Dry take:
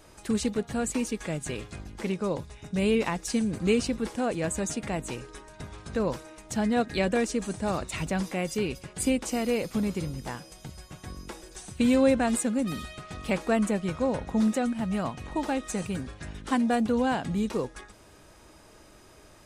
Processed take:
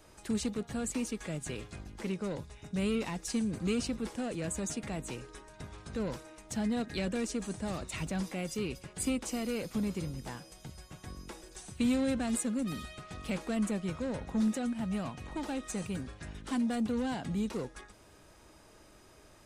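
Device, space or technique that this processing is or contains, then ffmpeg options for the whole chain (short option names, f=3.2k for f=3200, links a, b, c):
one-band saturation: -filter_complex "[0:a]acrossover=split=310|2500[a][b][c];[b]asoftclip=type=tanh:threshold=-32.5dB[d];[a][d][c]amix=inputs=3:normalize=0,volume=-4.5dB"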